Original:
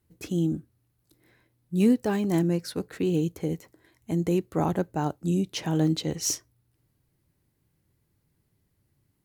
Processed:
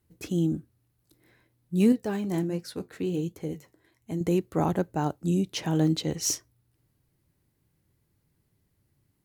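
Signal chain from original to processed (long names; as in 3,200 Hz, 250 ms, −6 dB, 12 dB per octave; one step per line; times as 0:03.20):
0:01.92–0:04.21: flanger 1.4 Hz, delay 6.9 ms, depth 4.6 ms, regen −67%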